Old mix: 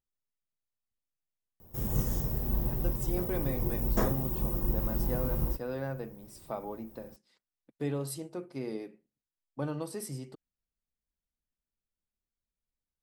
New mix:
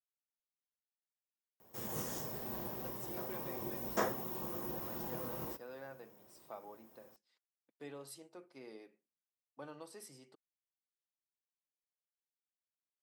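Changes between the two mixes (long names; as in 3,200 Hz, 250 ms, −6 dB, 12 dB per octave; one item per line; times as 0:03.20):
speech −9.5 dB
master: add meter weighting curve A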